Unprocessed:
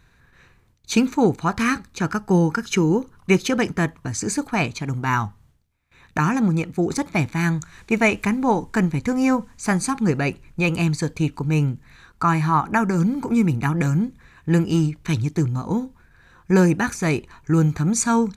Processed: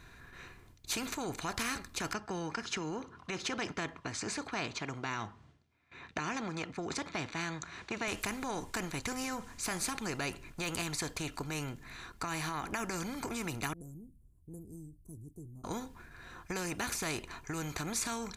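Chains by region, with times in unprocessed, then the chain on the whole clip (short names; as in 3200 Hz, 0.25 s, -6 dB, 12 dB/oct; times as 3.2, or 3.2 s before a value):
2.13–8.08 HPF 130 Hz + air absorption 120 m
13.73–15.64 Chebyshev band-stop 630–9500 Hz, order 3 + passive tone stack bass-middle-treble 6-0-2
whole clip: comb 2.9 ms, depth 32%; limiter -15 dBFS; spectral compressor 2:1; gain -4 dB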